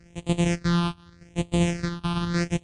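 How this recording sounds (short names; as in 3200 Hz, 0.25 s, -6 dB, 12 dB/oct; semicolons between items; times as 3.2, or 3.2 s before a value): a buzz of ramps at a fixed pitch in blocks of 256 samples; phasing stages 6, 0.83 Hz, lowest notch 520–1500 Hz; MP3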